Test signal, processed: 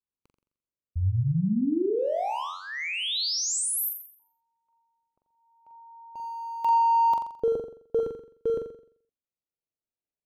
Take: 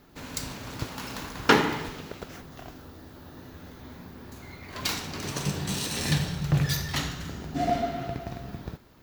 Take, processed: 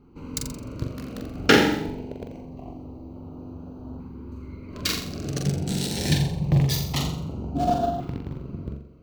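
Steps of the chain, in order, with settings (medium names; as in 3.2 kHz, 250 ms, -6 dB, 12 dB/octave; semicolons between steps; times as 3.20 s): local Wiener filter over 25 samples; flutter echo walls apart 7.4 m, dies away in 0.55 s; LFO notch saw up 0.25 Hz 630–2200 Hz; trim +4 dB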